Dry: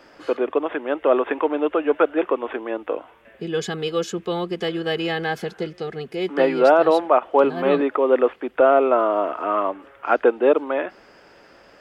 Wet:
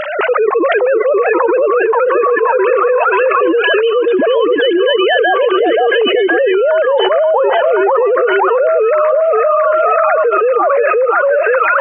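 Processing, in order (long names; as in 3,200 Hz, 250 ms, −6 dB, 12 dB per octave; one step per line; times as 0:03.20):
three sine waves on the formant tracks
echo through a band-pass that steps 527 ms, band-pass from 750 Hz, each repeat 0.7 octaves, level −1 dB
envelope flattener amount 100%
level −2.5 dB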